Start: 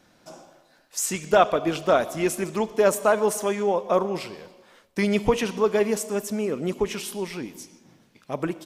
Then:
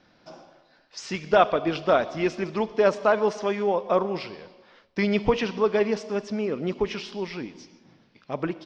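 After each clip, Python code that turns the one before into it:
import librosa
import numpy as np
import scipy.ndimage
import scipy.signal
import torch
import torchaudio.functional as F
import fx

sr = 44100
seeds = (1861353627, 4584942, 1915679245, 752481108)

y = scipy.signal.sosfilt(scipy.signal.ellip(4, 1.0, 80, 5200.0, 'lowpass', fs=sr, output='sos'), x)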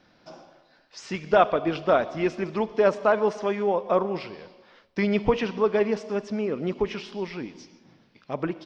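y = fx.dynamic_eq(x, sr, hz=5200.0, q=0.75, threshold_db=-46.0, ratio=4.0, max_db=-5)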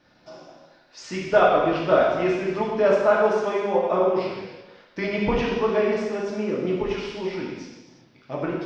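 y = fx.rev_gated(x, sr, seeds[0], gate_ms=420, shape='falling', drr_db=-4.5)
y = F.gain(torch.from_numpy(y), -3.0).numpy()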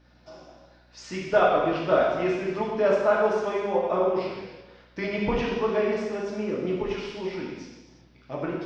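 y = fx.add_hum(x, sr, base_hz=60, snr_db=33)
y = F.gain(torch.from_numpy(y), -3.0).numpy()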